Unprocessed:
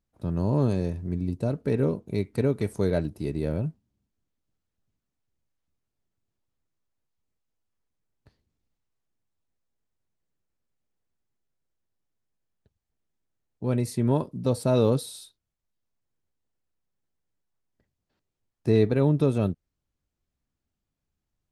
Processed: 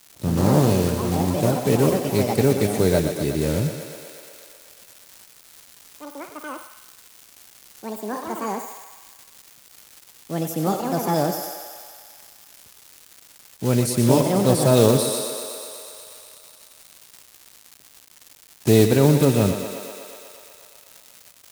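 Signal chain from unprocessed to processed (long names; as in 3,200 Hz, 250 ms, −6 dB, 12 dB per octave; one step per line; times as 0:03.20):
one scale factor per block 5 bits
high-pass filter 61 Hz
feedback echo with a high-pass in the loop 122 ms, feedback 80%, high-pass 270 Hz, level −7.5 dB
surface crackle 380 per second −44 dBFS
high-shelf EQ 4,500 Hz +10.5 dB
delay with pitch and tempo change per echo 92 ms, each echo +5 semitones, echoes 3, each echo −6 dB
highs frequency-modulated by the lows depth 0.14 ms
level +5.5 dB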